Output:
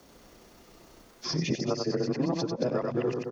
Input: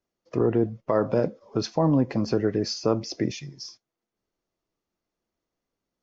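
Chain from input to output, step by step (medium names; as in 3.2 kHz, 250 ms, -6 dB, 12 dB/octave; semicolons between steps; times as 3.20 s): reverse the whole clip; in parallel at +2.5 dB: compression, threshold -35 dBFS, peak gain reduction 17 dB; on the sum: frequency shift +18 Hz; granular stretch 0.55×, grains 65 ms; on a send: loudspeakers at several distances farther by 31 m -5 dB, 75 m -10 dB; on the sum: three bands compressed up and down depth 100%; trim -7 dB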